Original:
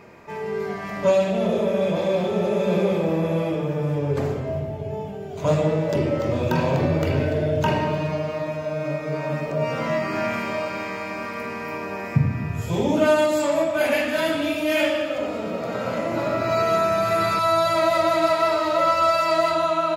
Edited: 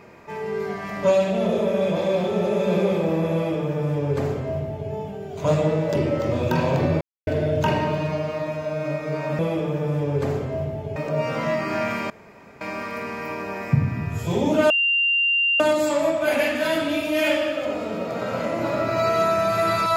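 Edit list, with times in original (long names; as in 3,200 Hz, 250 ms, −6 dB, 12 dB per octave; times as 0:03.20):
0:03.34–0:04.91: duplicate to 0:09.39
0:07.01–0:07.27: silence
0:10.53–0:11.04: fill with room tone
0:13.13: insert tone 2,780 Hz −17 dBFS 0.90 s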